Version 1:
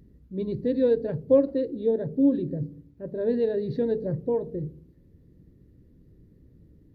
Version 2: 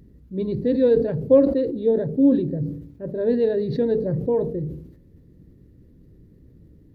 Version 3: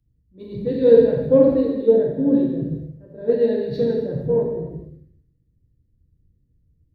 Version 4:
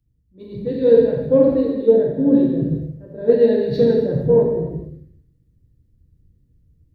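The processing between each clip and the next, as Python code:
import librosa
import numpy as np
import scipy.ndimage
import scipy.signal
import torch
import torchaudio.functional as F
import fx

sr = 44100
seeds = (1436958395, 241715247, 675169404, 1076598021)

y1 = fx.sustainer(x, sr, db_per_s=75.0)
y1 = y1 * 10.0 ** (4.0 / 20.0)
y2 = fx.rev_gated(y1, sr, seeds[0], gate_ms=490, shape='falling', drr_db=-4.0)
y2 = fx.band_widen(y2, sr, depth_pct=70)
y2 = y2 * 10.0 ** (-5.0 / 20.0)
y3 = fx.rider(y2, sr, range_db=3, speed_s=0.5)
y3 = y3 * 10.0 ** (2.5 / 20.0)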